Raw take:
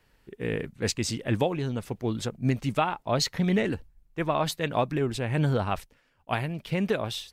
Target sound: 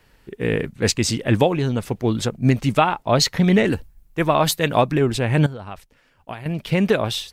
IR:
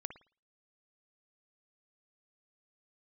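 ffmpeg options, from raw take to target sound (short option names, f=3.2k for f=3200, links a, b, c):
-filter_complex "[0:a]asettb=1/sr,asplit=3[a][b][c];[a]atrim=end=3.674[d];[b]atrim=start=3.67:end=4.82,asetpts=PTS-STARTPTS,afade=t=in:d=0.004:c=qsin,afade=t=out:st=1.146:d=0.004:c=qsin,highshelf=f=8.7k:g=9.5[e];[c]atrim=start=4.816[f];[d][e]acrossfade=d=0.004:c1=hsin:c2=qsin[g];[g][f]acrossfade=d=0.004:c1=qsin:c2=hsin,asettb=1/sr,asplit=3[h][i][j];[h]atrim=end=5.464[k];[i]atrim=start=5.46:end=6.46,asetpts=PTS-STARTPTS,afade=t=in:d=0.004:c=qsin,afade=t=out:st=0.996:d=0.004:c=qsin,acompressor=threshold=-40dB:ratio=6[l];[j]atrim=start=6.456[m];[k][l]acrossfade=d=0.004:c1=hsin:c2=qsin[n];[n][m]acrossfade=d=0.004:c1=qsin:c2=hsin,volume=8.5dB"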